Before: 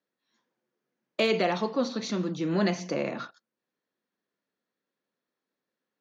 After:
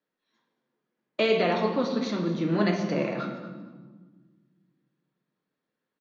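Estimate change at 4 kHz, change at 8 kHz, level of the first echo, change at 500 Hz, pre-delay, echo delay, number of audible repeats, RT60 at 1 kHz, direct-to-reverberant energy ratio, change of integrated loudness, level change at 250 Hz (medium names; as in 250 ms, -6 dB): 0.0 dB, no reading, -15.5 dB, +2.5 dB, 7 ms, 230 ms, 2, 1.4 s, 2.0 dB, +2.0 dB, +2.5 dB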